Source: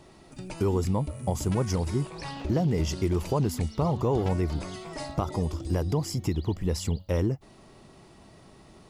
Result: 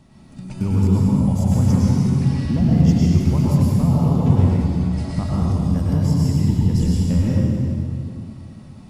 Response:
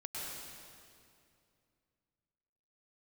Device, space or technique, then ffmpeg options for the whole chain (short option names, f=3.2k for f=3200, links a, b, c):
stairwell: -filter_complex "[0:a]asettb=1/sr,asplit=3[a][b][c];[a]atrim=end=3.644[d];[b]atrim=start=3.64:end=4.81,asetpts=PTS-STARTPTS,afade=t=in:d=0.004:c=qsin,afade=t=out:st=1.166:d=0.004:c=qsin,agate=range=-33dB:threshold=-27dB:ratio=3:detection=peak[e];[c]atrim=start=4.806[f];[d][e]acrossfade=d=0.004:c1=hsin:c2=qsin[g];[g][f]acrossfade=d=0.004:c1=qsin:c2=hsin,lowshelf=f=290:t=q:w=3:g=7[h];[1:a]atrim=start_sample=2205[i];[h][i]afir=irnorm=-1:irlink=0,volume=2dB"